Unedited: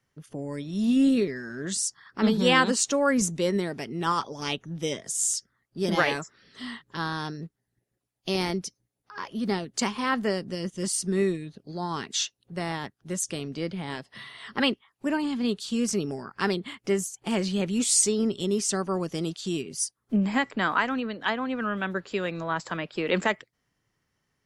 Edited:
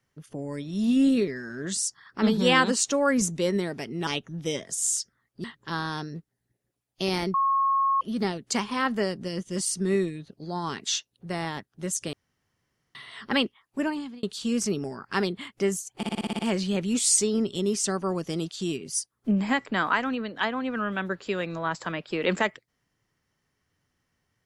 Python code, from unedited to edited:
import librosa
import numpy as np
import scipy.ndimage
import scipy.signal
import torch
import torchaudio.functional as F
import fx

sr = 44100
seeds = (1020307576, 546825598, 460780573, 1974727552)

y = fx.edit(x, sr, fx.cut(start_s=4.07, length_s=0.37),
    fx.cut(start_s=5.81, length_s=0.9),
    fx.bleep(start_s=8.61, length_s=0.67, hz=1090.0, db=-20.0),
    fx.room_tone_fill(start_s=13.4, length_s=0.82),
    fx.fade_out_span(start_s=15.09, length_s=0.41),
    fx.stutter(start_s=17.24, slice_s=0.06, count=8), tone=tone)